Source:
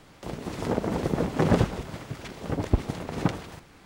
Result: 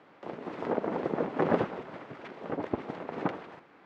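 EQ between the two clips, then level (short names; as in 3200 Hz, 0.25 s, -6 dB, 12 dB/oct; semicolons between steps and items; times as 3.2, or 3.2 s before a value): BPF 290–2000 Hz; -1.0 dB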